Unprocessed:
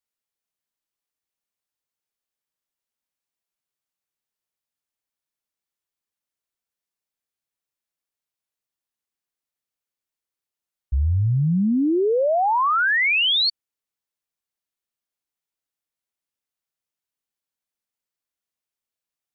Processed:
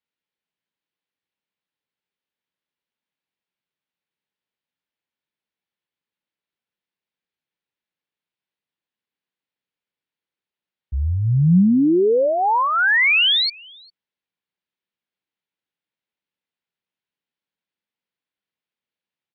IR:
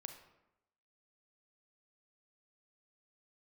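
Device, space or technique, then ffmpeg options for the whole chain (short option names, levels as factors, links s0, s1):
guitar cabinet: -filter_complex "[0:a]highpass=85,equalizer=f=98:t=q:w=4:g=-4,equalizer=f=180:t=q:w=4:g=4,equalizer=f=680:t=q:w=4:g=-5,equalizer=f=1200:t=q:w=4:g=-5,lowpass=f=3900:w=0.5412,lowpass=f=3900:w=1.3066,asplit=2[s0][s1];[s1]adelay=402.3,volume=0.0708,highshelf=f=4000:g=-9.05[s2];[s0][s2]amix=inputs=2:normalize=0,volume=1.58"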